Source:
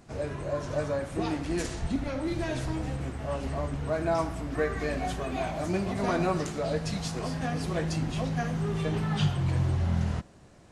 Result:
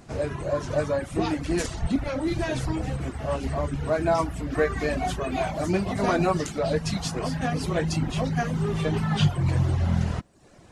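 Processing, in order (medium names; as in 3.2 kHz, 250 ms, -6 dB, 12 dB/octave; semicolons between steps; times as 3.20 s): reverb removal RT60 0.63 s; trim +5.5 dB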